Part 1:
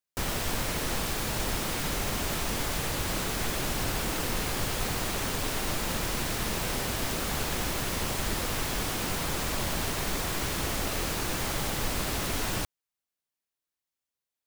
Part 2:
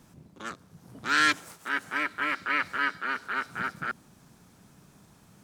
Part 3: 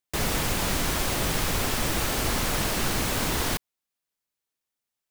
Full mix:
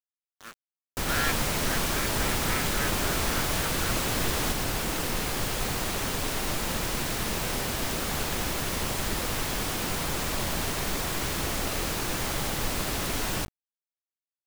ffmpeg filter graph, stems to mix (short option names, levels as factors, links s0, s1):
-filter_complex "[0:a]bandreject=f=50:t=h:w=6,bandreject=f=100:t=h:w=6,adelay=800,volume=1.12[s0];[1:a]bandreject=f=6300:w=6.5,volume=0.422[s1];[2:a]adelay=950,volume=0.562[s2];[s0][s1][s2]amix=inputs=3:normalize=0,acrusher=bits=6:mix=0:aa=0.000001"